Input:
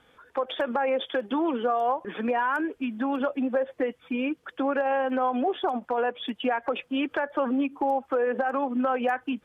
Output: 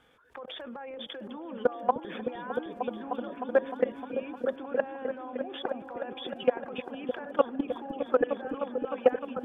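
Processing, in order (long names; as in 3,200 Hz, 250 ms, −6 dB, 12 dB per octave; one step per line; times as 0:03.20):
output level in coarse steps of 23 dB
echo whose low-pass opens from repeat to repeat 306 ms, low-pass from 200 Hz, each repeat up 1 octave, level 0 dB
level +5 dB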